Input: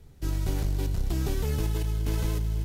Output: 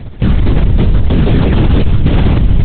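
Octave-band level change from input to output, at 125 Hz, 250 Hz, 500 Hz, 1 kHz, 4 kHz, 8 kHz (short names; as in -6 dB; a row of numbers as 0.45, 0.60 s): +18.0 dB, +21.5 dB, +17.0 dB, +18.5 dB, +15.0 dB, under -25 dB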